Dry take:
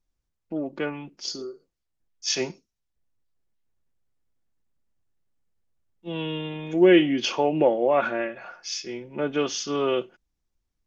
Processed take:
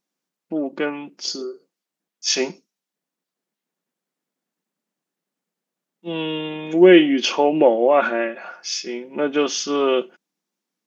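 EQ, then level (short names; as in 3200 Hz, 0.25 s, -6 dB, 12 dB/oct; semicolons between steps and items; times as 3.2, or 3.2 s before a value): brick-wall FIR high-pass 160 Hz; +5.5 dB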